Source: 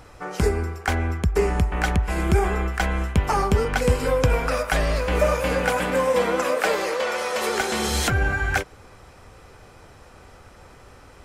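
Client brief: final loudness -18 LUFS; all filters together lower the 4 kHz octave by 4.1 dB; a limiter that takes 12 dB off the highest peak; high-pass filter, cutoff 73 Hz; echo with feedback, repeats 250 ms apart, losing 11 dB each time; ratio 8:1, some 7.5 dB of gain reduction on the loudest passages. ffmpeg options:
-af "highpass=73,equalizer=f=4000:t=o:g=-5.5,acompressor=threshold=0.0708:ratio=8,alimiter=limit=0.0668:level=0:latency=1,aecho=1:1:250|500|750:0.282|0.0789|0.0221,volume=5.01"

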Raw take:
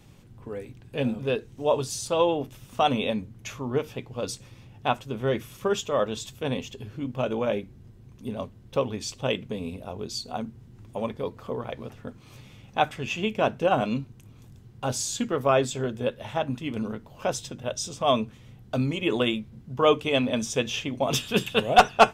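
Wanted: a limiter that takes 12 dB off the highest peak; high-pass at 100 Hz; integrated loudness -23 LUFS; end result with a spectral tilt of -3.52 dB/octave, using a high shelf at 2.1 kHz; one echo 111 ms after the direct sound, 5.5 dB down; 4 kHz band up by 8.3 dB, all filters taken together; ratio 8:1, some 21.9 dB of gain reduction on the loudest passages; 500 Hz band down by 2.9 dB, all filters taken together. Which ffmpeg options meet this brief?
-af "highpass=100,equalizer=f=500:t=o:g=-4,highshelf=f=2100:g=3,equalizer=f=4000:t=o:g=8,acompressor=threshold=0.0224:ratio=8,alimiter=level_in=1.5:limit=0.0631:level=0:latency=1,volume=0.668,aecho=1:1:111:0.531,volume=6.31"

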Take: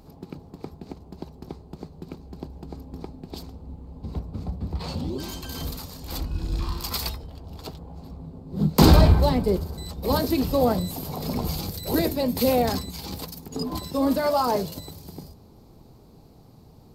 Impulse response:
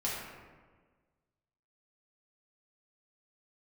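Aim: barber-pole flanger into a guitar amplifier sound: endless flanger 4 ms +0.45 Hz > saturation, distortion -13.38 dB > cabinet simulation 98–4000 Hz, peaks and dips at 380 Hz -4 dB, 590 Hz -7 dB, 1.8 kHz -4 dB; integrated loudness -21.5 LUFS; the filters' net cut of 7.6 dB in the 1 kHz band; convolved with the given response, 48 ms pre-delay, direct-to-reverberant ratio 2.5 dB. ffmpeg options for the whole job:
-filter_complex "[0:a]equalizer=f=1000:t=o:g=-8.5,asplit=2[s0][s1];[1:a]atrim=start_sample=2205,adelay=48[s2];[s1][s2]afir=irnorm=-1:irlink=0,volume=0.398[s3];[s0][s3]amix=inputs=2:normalize=0,asplit=2[s4][s5];[s5]adelay=4,afreqshift=0.45[s6];[s4][s6]amix=inputs=2:normalize=1,asoftclip=threshold=0.211,highpass=98,equalizer=f=380:t=q:w=4:g=-4,equalizer=f=590:t=q:w=4:g=-7,equalizer=f=1800:t=q:w=4:g=-4,lowpass=f=4000:w=0.5412,lowpass=f=4000:w=1.3066,volume=3.16"

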